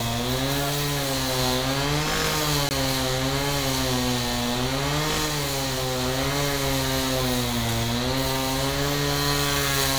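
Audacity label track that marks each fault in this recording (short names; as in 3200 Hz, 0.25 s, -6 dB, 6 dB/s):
0.590000	1.390000	clipped -21 dBFS
2.690000	2.710000	gap 19 ms
5.250000	6.020000	clipped -22.5 dBFS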